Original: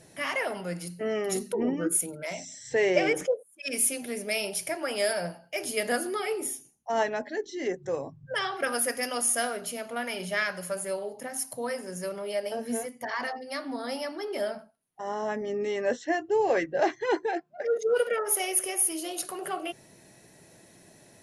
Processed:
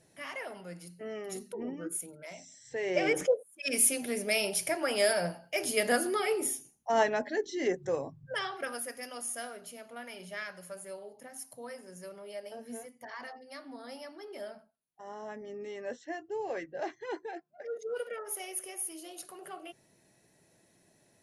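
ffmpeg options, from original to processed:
-af "volume=0.5dB,afade=t=in:st=2.83:d=0.44:silence=0.281838,afade=t=out:st=7.7:d=1.15:silence=0.251189"

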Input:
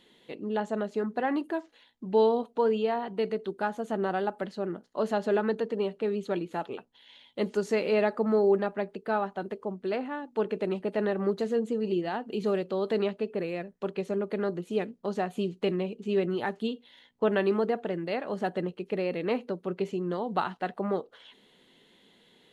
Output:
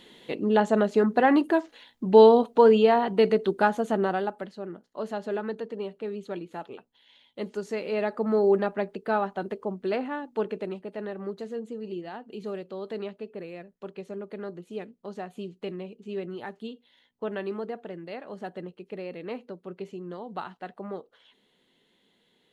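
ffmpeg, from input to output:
-af "volume=15.5dB,afade=t=out:st=3.59:d=0.59:silence=0.446684,afade=t=out:st=4.18:d=0.33:silence=0.501187,afade=t=in:st=7.87:d=0.72:silence=0.446684,afade=t=out:st=10.16:d=0.67:silence=0.334965"

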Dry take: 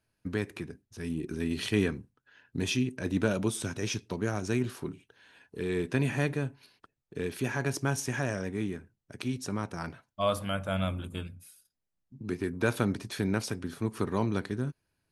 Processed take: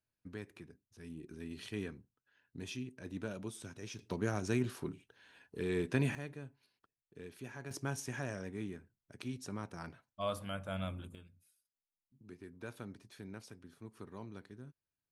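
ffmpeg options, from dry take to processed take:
-af "asetnsamples=n=441:p=0,asendcmd='3.99 volume volume -4dB;6.15 volume volume -16dB;7.71 volume volume -9dB;11.15 volume volume -19dB',volume=-14dB"

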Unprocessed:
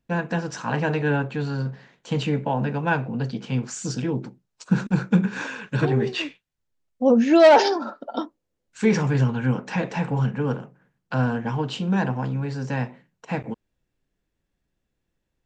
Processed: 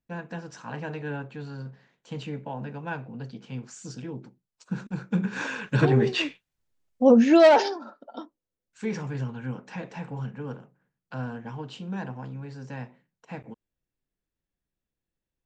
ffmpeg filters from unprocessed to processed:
-af "volume=1dB,afade=t=in:st=5.07:d=0.47:silence=0.251189,afade=t=out:st=7.2:d=0.57:silence=0.251189"

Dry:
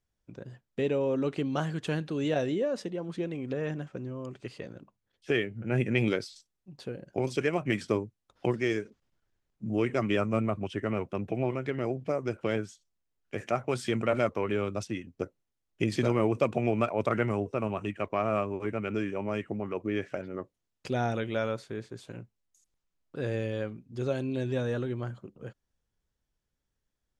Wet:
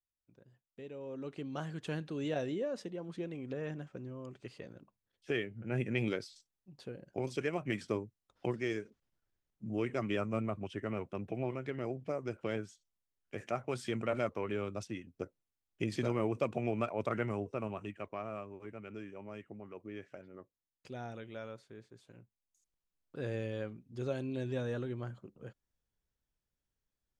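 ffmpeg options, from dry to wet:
-af "volume=1.5dB,afade=t=in:st=0.9:d=1.06:silence=0.251189,afade=t=out:st=17.55:d=0.82:silence=0.421697,afade=t=in:st=22.16:d=1:silence=0.375837"

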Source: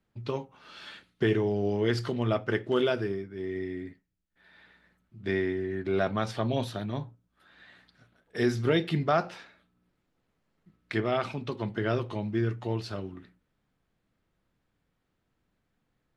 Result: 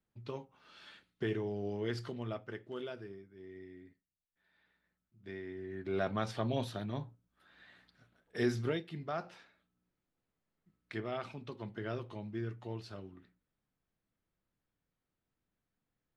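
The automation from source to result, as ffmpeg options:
-af "volume=7.5dB,afade=t=out:st=2:d=0.57:silence=0.473151,afade=t=in:st=5.43:d=0.72:silence=0.281838,afade=t=out:st=8.58:d=0.26:silence=0.251189,afade=t=in:st=8.84:d=0.52:silence=0.473151"

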